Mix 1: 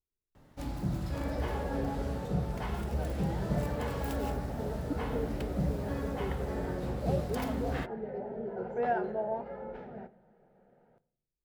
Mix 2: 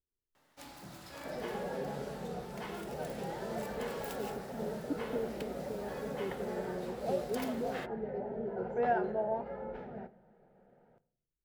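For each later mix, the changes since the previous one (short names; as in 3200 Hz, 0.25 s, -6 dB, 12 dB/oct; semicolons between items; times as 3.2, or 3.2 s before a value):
first sound: add HPF 1500 Hz 6 dB/oct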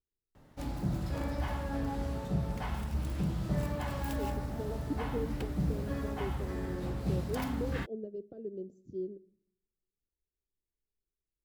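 first sound: remove HPF 1500 Hz 6 dB/oct; second sound: muted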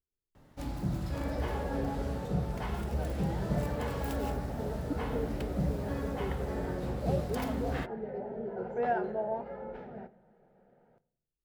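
second sound: unmuted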